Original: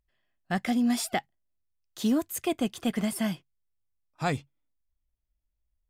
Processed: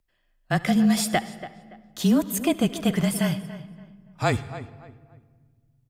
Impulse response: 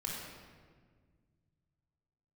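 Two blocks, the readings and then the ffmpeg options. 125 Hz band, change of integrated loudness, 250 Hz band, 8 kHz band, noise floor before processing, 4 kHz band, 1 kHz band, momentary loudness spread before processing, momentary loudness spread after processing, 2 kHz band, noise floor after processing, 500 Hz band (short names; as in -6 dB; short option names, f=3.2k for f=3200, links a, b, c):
+10.5 dB, +5.5 dB, +5.5 dB, +5.5 dB, -80 dBFS, +5.5 dB, +4.5 dB, 7 LU, 20 LU, +5.5 dB, -69 dBFS, +6.0 dB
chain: -filter_complex "[0:a]asplit=2[a][b];[b]adelay=285,lowpass=f=2.7k:p=1,volume=-14dB,asplit=2[c][d];[d]adelay=285,lowpass=f=2.7k:p=1,volume=0.3,asplit=2[e][f];[f]adelay=285,lowpass=f=2.7k:p=1,volume=0.3[g];[a][c][e][g]amix=inputs=4:normalize=0,asplit=2[h][i];[1:a]atrim=start_sample=2205,adelay=72[j];[i][j]afir=irnorm=-1:irlink=0,volume=-18dB[k];[h][k]amix=inputs=2:normalize=0,afreqshift=-26,volume=5.5dB"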